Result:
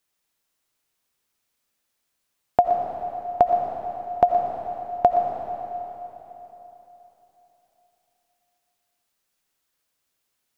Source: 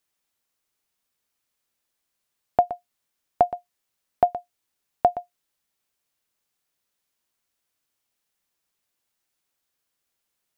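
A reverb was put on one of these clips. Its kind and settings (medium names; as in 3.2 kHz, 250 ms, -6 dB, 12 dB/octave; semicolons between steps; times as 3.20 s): algorithmic reverb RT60 3.6 s, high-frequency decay 0.95×, pre-delay 45 ms, DRR 2.5 dB; trim +1.5 dB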